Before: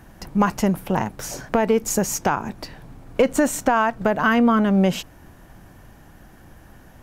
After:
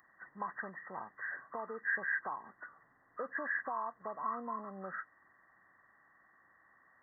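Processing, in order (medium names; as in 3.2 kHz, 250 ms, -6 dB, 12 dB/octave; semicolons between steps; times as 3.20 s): knee-point frequency compression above 1 kHz 4:1; differentiator; trim -1.5 dB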